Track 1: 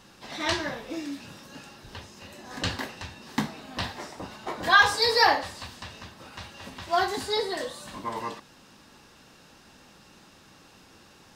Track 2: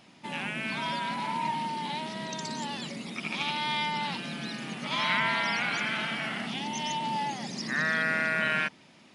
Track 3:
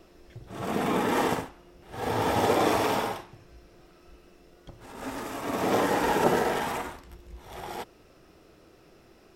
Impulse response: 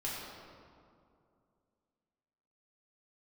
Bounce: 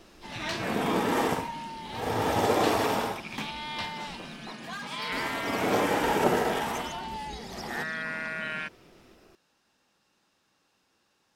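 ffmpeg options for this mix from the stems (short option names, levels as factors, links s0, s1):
-filter_complex "[0:a]lowshelf=f=210:g=-9.5,asoftclip=type=tanh:threshold=0.0944,volume=0.596,afade=t=out:st=4.15:d=0.64:silence=0.266073[s0];[1:a]volume=0.473[s1];[2:a]volume=0.891,asplit=3[s2][s3][s4];[s2]atrim=end=4.52,asetpts=PTS-STARTPTS,afade=t=out:st=4.516:d=0.004:c=hsin[s5];[s3]atrim=start=4.52:end=5.12,asetpts=PTS-STARTPTS,volume=0[s6];[s4]atrim=start=5.12,asetpts=PTS-STARTPTS,afade=t=in:d=0.004:c=hsin[s7];[s5][s6][s7]concat=n=3:v=0:a=1[s8];[s0][s1][s8]amix=inputs=3:normalize=0"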